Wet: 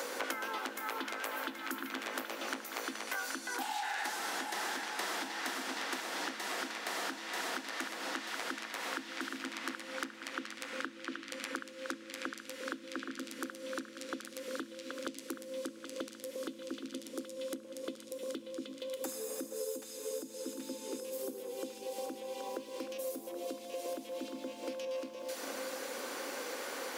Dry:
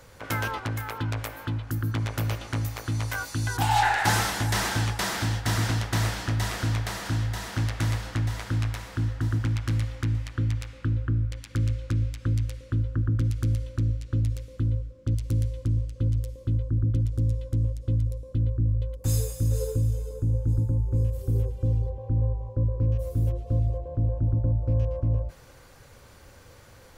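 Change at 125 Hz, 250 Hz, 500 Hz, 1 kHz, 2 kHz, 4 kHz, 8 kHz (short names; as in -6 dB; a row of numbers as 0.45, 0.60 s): under -40 dB, -9.0 dB, -2.0 dB, -8.5 dB, -5.0 dB, -5.0 dB, -5.5 dB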